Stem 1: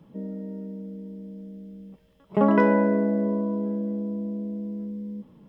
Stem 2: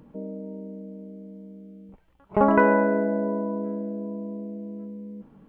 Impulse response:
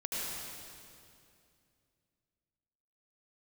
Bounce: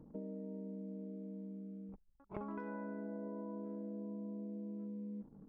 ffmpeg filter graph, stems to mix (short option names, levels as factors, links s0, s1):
-filter_complex "[0:a]equalizer=f=68:t=o:w=0.5:g=-13,flanger=delay=8.8:depth=3.9:regen=-32:speed=0.42:shape=triangular,volume=0.188[s0];[1:a]highshelf=f=2000:g=-3.5,acompressor=threshold=0.0562:ratio=8,volume=0.596[s1];[s0][s1]amix=inputs=2:normalize=0,bandreject=f=60:t=h:w=6,bandreject=f=120:t=h:w=6,bandreject=f=180:t=h:w=6,bandreject=f=240:t=h:w=6,anlmdn=0.000158,acompressor=threshold=0.00794:ratio=6"